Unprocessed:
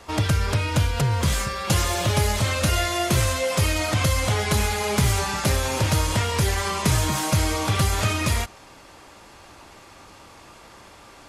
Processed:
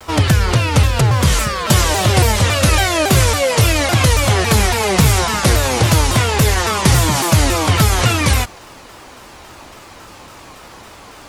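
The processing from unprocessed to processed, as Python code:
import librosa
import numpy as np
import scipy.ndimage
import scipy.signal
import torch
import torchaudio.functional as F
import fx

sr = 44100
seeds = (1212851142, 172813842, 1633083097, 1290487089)

y = fx.quant_dither(x, sr, seeds[0], bits=10, dither='none')
y = fx.vibrato_shape(y, sr, shape='saw_down', rate_hz=3.6, depth_cents=250.0)
y = y * librosa.db_to_amplitude(8.5)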